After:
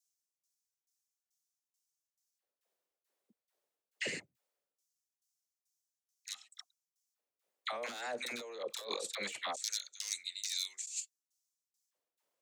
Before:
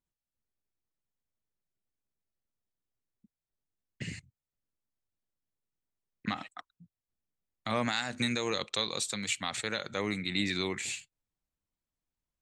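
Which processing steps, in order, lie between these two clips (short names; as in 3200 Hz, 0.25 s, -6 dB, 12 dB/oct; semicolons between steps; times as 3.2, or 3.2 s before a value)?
tremolo saw down 2.3 Hz, depth 95%; wavefolder -26.5 dBFS; LFO high-pass square 0.21 Hz 510–6000 Hz; dispersion lows, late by 65 ms, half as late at 820 Hz; negative-ratio compressor -45 dBFS, ratio -1; gain +4.5 dB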